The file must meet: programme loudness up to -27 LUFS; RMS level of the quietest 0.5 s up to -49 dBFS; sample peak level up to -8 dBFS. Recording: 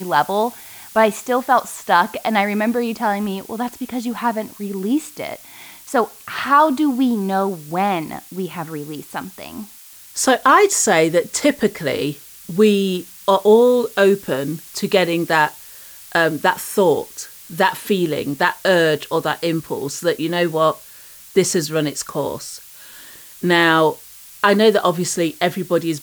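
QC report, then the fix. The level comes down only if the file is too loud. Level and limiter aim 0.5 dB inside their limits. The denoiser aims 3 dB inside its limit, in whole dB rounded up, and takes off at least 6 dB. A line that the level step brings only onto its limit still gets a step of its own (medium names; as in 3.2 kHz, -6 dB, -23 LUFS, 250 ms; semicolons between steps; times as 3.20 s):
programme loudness -18.0 LUFS: fail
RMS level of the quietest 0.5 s -42 dBFS: fail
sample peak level -3.0 dBFS: fail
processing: trim -9.5 dB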